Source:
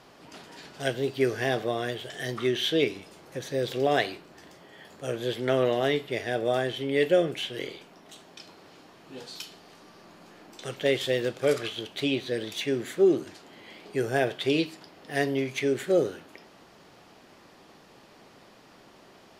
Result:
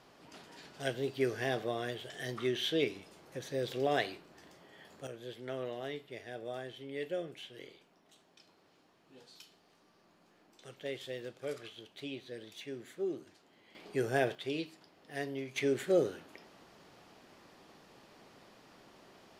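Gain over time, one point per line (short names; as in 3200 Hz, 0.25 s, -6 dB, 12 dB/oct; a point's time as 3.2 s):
-7 dB
from 5.07 s -15.5 dB
from 13.75 s -5 dB
from 14.35 s -12 dB
from 15.56 s -5 dB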